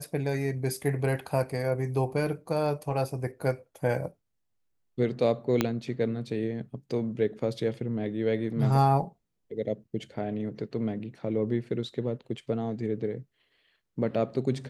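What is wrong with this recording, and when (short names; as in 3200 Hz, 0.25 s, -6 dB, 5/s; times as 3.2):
5.61 pop -9 dBFS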